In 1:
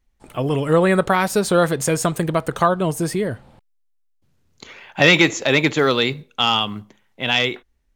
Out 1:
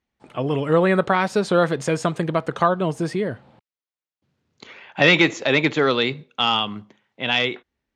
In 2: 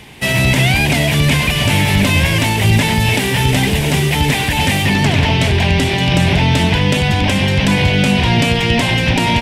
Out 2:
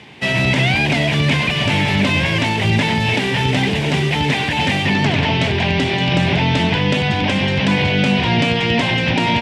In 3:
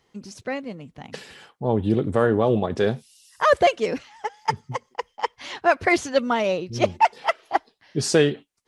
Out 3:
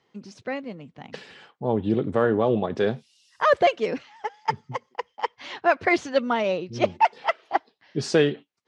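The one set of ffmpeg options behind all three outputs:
-af "highpass=120,lowpass=4.7k,volume=-1.5dB"

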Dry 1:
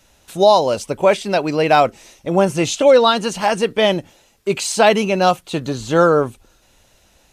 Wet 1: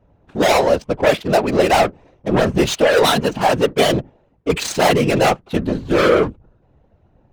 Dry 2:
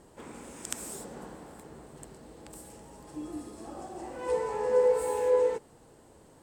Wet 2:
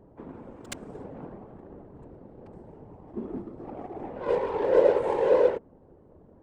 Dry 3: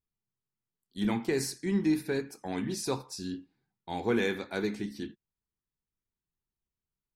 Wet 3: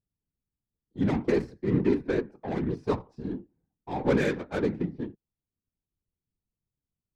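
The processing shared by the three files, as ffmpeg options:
-af "adynamicsmooth=sensitivity=3:basefreq=640,aeval=exprs='0.794*(cos(1*acos(clip(val(0)/0.794,-1,1)))-cos(1*PI/2))+0.355*(cos(5*acos(clip(val(0)/0.794,-1,1)))-cos(5*PI/2))':c=same,afftfilt=real='hypot(re,im)*cos(2*PI*random(0))':imag='hypot(re,im)*sin(2*PI*random(1))':win_size=512:overlap=0.75"

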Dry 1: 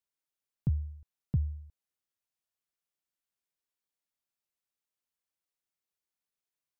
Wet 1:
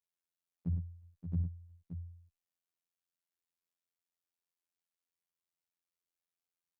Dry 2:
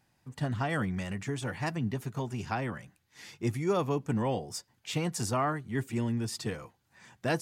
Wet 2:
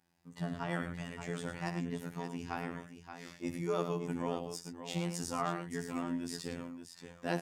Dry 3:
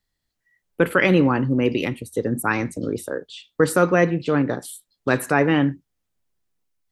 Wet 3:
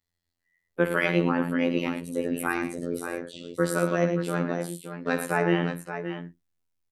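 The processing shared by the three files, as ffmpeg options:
-af "afreqshift=16,aecho=1:1:62|105|576:0.251|0.355|0.355,afftfilt=real='hypot(re,im)*cos(PI*b)':imag='0':win_size=2048:overlap=0.75,volume=-3dB"

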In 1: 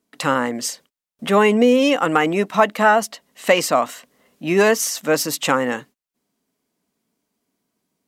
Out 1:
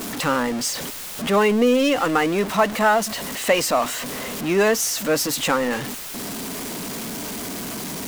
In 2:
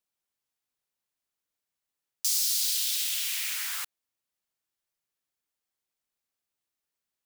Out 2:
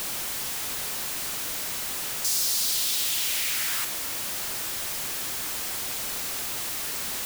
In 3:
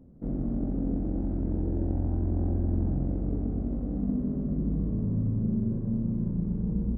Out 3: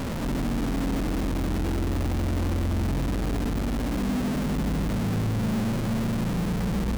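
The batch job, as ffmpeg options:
-af "aeval=exprs='val(0)+0.5*0.106*sgn(val(0))':c=same,volume=-4.5dB"

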